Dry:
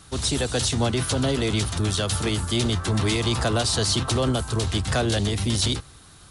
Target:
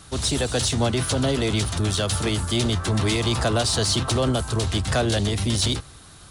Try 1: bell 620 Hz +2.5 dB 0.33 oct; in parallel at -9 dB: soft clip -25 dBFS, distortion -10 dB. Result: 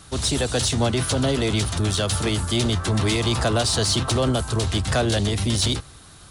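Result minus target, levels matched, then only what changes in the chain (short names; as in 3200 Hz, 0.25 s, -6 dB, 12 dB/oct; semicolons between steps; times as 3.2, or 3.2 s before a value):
soft clip: distortion -4 dB
change: soft clip -33 dBFS, distortion -5 dB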